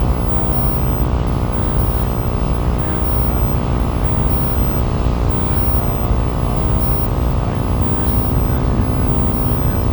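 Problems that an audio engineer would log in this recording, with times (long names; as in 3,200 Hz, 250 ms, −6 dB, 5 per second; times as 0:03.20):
mains buzz 60 Hz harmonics 21 −21 dBFS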